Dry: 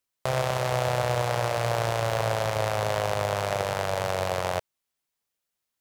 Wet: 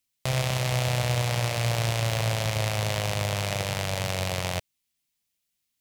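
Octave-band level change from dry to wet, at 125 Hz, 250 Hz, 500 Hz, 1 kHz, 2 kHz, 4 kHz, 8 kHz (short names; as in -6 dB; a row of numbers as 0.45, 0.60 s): +4.5, +3.0, -5.5, -5.5, +0.5, +4.5, +4.5 dB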